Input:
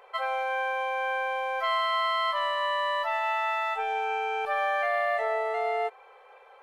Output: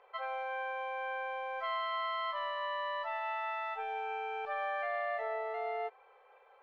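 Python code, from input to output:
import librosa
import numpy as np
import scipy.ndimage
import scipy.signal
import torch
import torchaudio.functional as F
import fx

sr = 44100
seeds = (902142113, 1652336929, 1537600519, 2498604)

y = fx.air_absorb(x, sr, metres=150.0)
y = F.gain(torch.from_numpy(y), -8.0).numpy()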